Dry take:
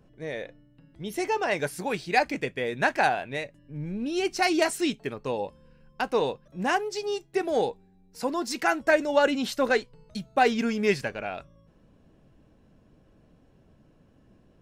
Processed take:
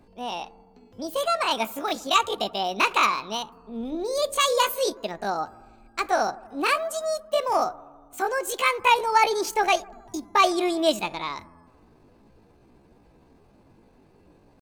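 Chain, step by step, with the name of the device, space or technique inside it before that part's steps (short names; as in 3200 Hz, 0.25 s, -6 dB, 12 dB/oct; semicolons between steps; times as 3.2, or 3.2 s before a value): 3.82–4.9 notches 60/120/180/240/300/360/420 Hz; chipmunk voice (pitch shift +7.5 st); analogue delay 80 ms, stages 1024, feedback 69%, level -22 dB; gain +2.5 dB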